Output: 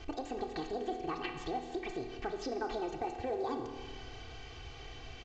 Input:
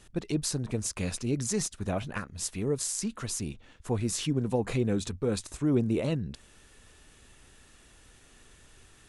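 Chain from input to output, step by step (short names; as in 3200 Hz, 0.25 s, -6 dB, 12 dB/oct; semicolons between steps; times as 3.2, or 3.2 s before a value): LPF 1600 Hz 12 dB/oct; tilt shelf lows -3 dB; comb 4.5 ms, depth 93%; compressor 3:1, threshold -50 dBFS, peak gain reduction 21 dB; spring tank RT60 2.9 s, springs 42/49 ms, chirp 55 ms, DRR 5 dB; speed mistake 45 rpm record played at 78 rpm; gain +8.5 dB; µ-law 128 kbps 16000 Hz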